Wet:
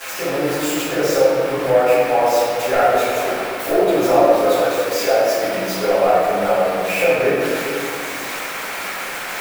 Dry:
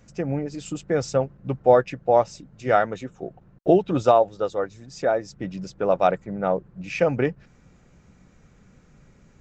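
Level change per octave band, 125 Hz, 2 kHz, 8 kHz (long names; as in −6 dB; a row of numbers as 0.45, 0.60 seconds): −2.5 dB, +12.5 dB, can't be measured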